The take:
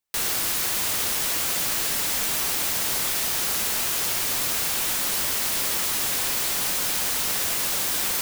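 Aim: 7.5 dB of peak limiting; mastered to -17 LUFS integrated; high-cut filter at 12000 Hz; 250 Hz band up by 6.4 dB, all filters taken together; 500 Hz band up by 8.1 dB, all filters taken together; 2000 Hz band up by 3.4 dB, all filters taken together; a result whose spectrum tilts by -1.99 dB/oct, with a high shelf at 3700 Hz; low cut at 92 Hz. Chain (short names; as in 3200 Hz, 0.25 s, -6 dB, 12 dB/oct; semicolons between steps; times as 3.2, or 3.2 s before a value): HPF 92 Hz; LPF 12000 Hz; bell 250 Hz +5.5 dB; bell 500 Hz +8.5 dB; bell 2000 Hz +5 dB; high shelf 3700 Hz -4.5 dB; gain +12.5 dB; limiter -9 dBFS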